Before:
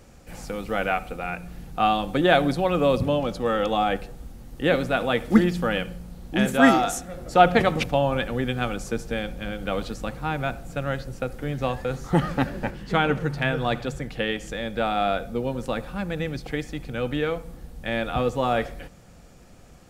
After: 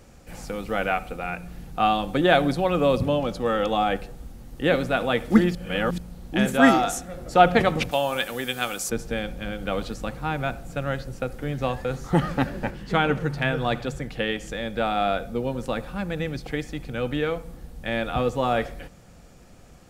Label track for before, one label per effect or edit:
5.550000	5.980000	reverse
7.910000	8.900000	RIAA equalisation recording

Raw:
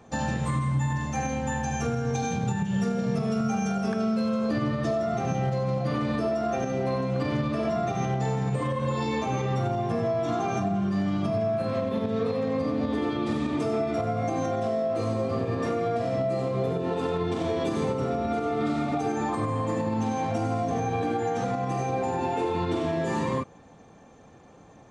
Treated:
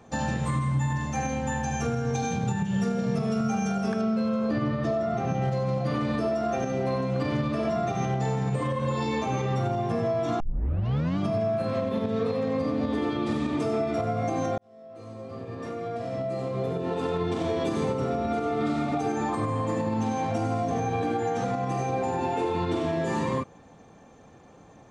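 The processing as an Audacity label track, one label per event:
4.010000	5.420000	low-pass filter 3,300 Hz 6 dB per octave
10.400000	10.400000	tape start 0.78 s
14.580000	17.210000	fade in

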